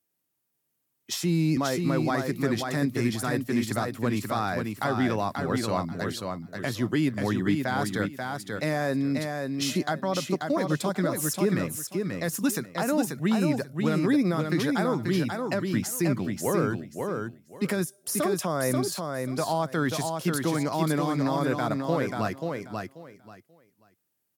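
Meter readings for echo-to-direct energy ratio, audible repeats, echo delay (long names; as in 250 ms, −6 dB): −4.5 dB, 3, 536 ms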